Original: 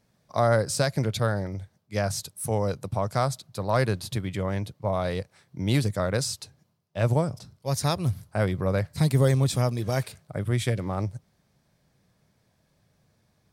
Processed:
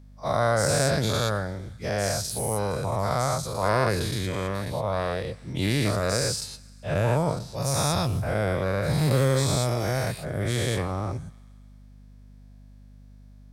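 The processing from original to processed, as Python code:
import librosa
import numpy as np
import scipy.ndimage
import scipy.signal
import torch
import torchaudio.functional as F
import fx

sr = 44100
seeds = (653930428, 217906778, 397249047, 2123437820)

y = fx.spec_dilate(x, sr, span_ms=240)
y = fx.echo_thinned(y, sr, ms=132, feedback_pct=67, hz=590.0, wet_db=-24.0)
y = fx.add_hum(y, sr, base_hz=50, snr_db=22)
y = F.gain(torch.from_numpy(y), -5.0).numpy()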